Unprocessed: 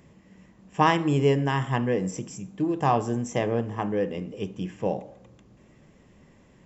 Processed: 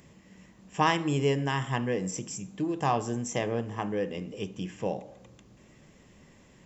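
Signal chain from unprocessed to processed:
high-shelf EQ 2,400 Hz +8 dB
in parallel at −3 dB: downward compressor, threshold −35 dBFS, peak gain reduction 19.5 dB
on the sum: level −6 dB

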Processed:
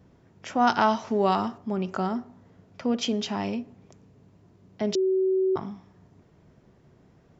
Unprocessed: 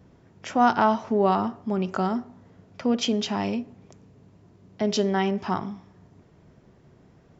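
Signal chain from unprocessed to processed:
0:00.67–0:01.58: high-shelf EQ 2,400 Hz +10.5 dB
0:04.95–0:05.56: beep over 378 Hz −17.5 dBFS
level −2.5 dB

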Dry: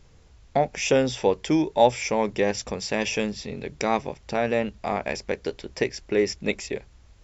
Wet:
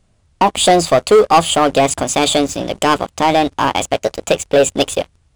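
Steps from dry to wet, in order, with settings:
dynamic equaliser 320 Hz, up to +6 dB, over −41 dBFS, Q 7.9
leveller curve on the samples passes 3
wrong playback speed 33 rpm record played at 45 rpm
level +1.5 dB

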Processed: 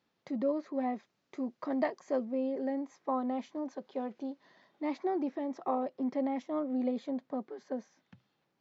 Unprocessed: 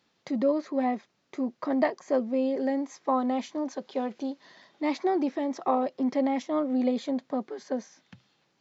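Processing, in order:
high-shelf EQ 2,800 Hz −7.5 dB, from 0:00.95 −2 dB, from 0:02.25 −10.5 dB
level −6 dB

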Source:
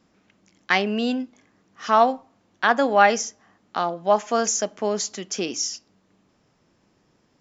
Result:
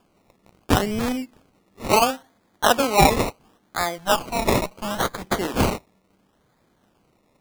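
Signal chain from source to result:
0:03.98–0:05.22: lower of the sound and its delayed copy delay 1.2 ms
high-shelf EQ 2,100 Hz +10 dB
sample-and-hold swept by an LFO 22×, swing 60% 0.72 Hz
level −1.5 dB

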